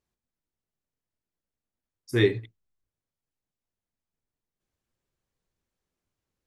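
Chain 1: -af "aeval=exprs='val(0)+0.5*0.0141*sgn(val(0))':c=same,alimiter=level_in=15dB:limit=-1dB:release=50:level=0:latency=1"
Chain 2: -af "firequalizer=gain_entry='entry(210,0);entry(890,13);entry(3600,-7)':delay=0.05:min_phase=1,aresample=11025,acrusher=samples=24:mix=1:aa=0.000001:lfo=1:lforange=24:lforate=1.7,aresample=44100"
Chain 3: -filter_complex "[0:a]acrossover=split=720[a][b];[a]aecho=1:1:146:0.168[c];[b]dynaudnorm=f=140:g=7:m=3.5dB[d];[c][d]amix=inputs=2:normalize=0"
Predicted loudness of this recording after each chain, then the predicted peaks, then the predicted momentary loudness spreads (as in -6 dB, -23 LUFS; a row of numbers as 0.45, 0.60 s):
-23.0, -21.5, -25.0 LUFS; -1.0, -4.5, -8.0 dBFS; 17, 13, 16 LU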